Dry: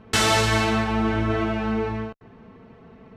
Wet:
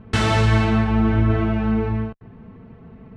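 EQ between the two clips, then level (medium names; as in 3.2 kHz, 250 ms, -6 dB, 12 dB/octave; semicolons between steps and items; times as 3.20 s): low-pass 11 kHz 24 dB/octave; tone controls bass +10 dB, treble -10 dB; -1.0 dB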